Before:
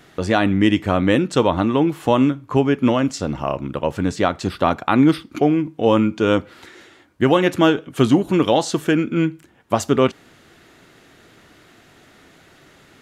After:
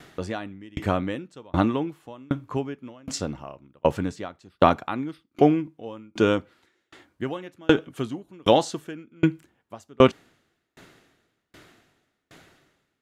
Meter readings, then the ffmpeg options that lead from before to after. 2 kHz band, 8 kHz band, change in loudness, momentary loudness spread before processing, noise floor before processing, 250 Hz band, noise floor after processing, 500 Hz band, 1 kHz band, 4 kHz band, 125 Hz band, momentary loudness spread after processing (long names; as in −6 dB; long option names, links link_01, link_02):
−8.5 dB, −7.0 dB, −6.5 dB, 7 LU, −51 dBFS, −9.0 dB, −78 dBFS, −6.0 dB, −5.5 dB, −6.5 dB, −8.0 dB, 17 LU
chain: -af "aeval=exprs='val(0)*pow(10,-37*if(lt(mod(1.3*n/s,1),2*abs(1.3)/1000),1-mod(1.3*n/s,1)/(2*abs(1.3)/1000),(mod(1.3*n/s,1)-2*abs(1.3)/1000)/(1-2*abs(1.3)/1000))/20)':channel_layout=same,volume=2.5dB"